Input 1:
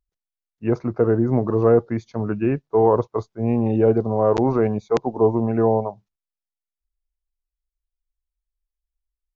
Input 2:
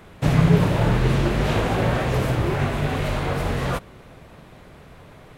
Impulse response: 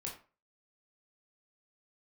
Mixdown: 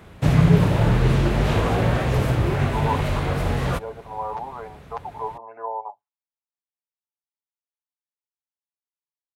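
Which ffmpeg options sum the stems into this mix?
-filter_complex "[0:a]highpass=f=880:t=q:w=4.5,aemphasis=mode=reproduction:type=75kf,aecho=1:1:7:0.75,volume=0.224[s0];[1:a]volume=0.891[s1];[s0][s1]amix=inputs=2:normalize=0,highpass=54,lowshelf=f=72:g=11.5"

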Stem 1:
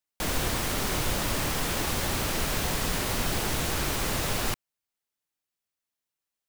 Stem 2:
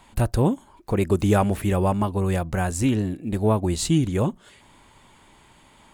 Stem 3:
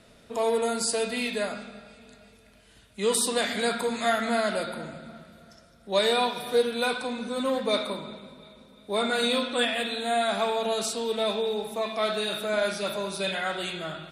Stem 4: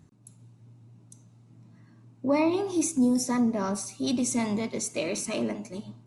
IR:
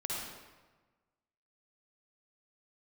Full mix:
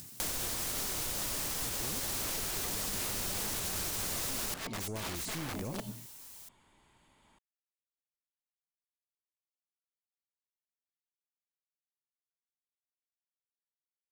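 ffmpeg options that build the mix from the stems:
-filter_complex "[0:a]bass=f=250:g=-3,treble=f=4000:g=10,volume=1.06[s0];[1:a]adelay=1450,volume=0.251[s1];[3:a]aeval=exprs='(mod(29.9*val(0)+1,2)-1)/29.9':c=same,volume=1.19[s2];[s1][s2]amix=inputs=2:normalize=0,aeval=exprs='(tanh(15.8*val(0)+0.4)-tanh(0.4))/15.8':c=same,alimiter=level_in=1.78:limit=0.0631:level=0:latency=1,volume=0.562,volume=1[s3];[s0]acompressor=mode=upward:threshold=0.0398:ratio=2.5,alimiter=limit=0.15:level=0:latency=1:release=148,volume=1[s4];[s3][s4]amix=inputs=2:normalize=0,acompressor=threshold=0.0224:ratio=6"

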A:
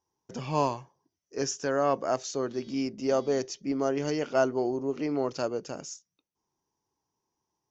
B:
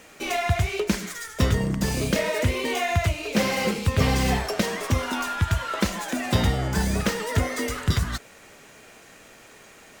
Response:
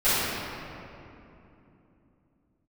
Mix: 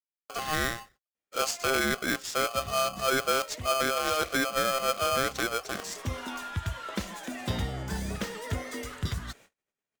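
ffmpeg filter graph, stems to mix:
-filter_complex "[0:a]aeval=exprs='val(0)*sgn(sin(2*PI*930*n/s))':c=same,volume=1.33,asplit=2[s0][s1];[1:a]equalizer=f=3400:t=o:w=0.24:g=3,adelay=1150,volume=0.335[s2];[s1]apad=whole_len=491742[s3];[s2][s3]sidechaincompress=threshold=0.0141:ratio=10:attack=16:release=390[s4];[s0][s4]amix=inputs=2:normalize=0,agate=range=0.0158:threshold=0.00224:ratio=16:detection=peak,alimiter=limit=0.15:level=0:latency=1:release=223"

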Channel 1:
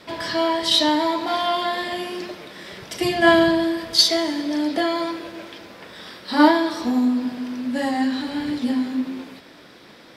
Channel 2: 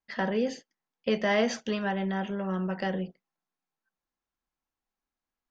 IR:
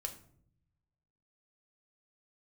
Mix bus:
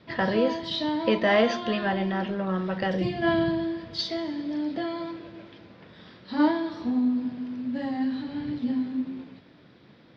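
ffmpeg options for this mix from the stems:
-filter_complex "[0:a]equalizer=f=120:t=o:w=2.3:g=14.5,volume=0.237[s0];[1:a]volume=1.12,asplit=2[s1][s2];[s2]volume=0.562[s3];[2:a]atrim=start_sample=2205[s4];[s3][s4]afir=irnorm=-1:irlink=0[s5];[s0][s1][s5]amix=inputs=3:normalize=0,lowpass=f=4600:w=0.5412,lowpass=f=4600:w=1.3066"

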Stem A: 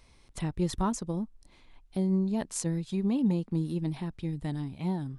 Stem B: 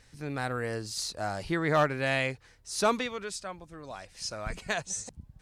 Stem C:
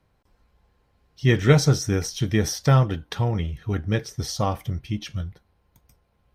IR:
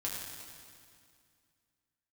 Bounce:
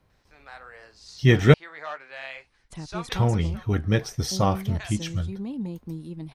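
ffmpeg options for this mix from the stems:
-filter_complex "[0:a]agate=range=0.0224:threshold=0.00224:ratio=3:detection=peak,adelay=2350,volume=0.531[s0];[1:a]acrossover=split=570 6200:gain=0.0631 1 0.0891[s1][s2][s3];[s1][s2][s3]amix=inputs=3:normalize=0,flanger=delay=9.7:depth=5.7:regen=-54:speed=1.6:shape=triangular,adelay=100,volume=0.631[s4];[2:a]volume=1.19,asplit=3[s5][s6][s7];[s5]atrim=end=1.54,asetpts=PTS-STARTPTS,afade=t=out:st=1.536:d=0.004:c=hsin[s8];[s6]atrim=start=1.54:end=3.03,asetpts=PTS-STARTPTS,volume=0[s9];[s7]atrim=start=3.03,asetpts=PTS-STARTPTS,afade=t=in:d=0.004:c=hsin[s10];[s8][s9][s10]concat=n=3:v=0:a=1[s11];[s0][s4][s11]amix=inputs=3:normalize=0"

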